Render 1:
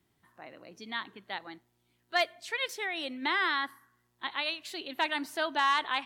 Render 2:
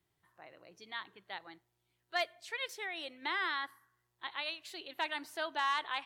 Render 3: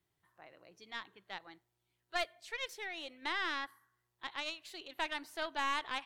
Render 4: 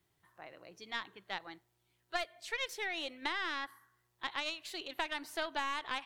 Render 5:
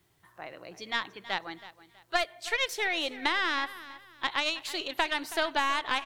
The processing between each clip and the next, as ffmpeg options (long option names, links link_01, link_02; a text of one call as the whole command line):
ffmpeg -i in.wav -af "equalizer=frequency=240:width=3.4:gain=-13,volume=-6dB" out.wav
ffmpeg -i in.wav -af "aeval=exprs='(tanh(20*val(0)+0.7)-tanh(0.7))/20':channel_layout=same,volume=1.5dB" out.wav
ffmpeg -i in.wav -af "acompressor=threshold=-37dB:ratio=6,volume=5.5dB" out.wav
ffmpeg -i in.wav -af "aecho=1:1:323|646|969:0.15|0.0479|0.0153,volume=8.5dB" out.wav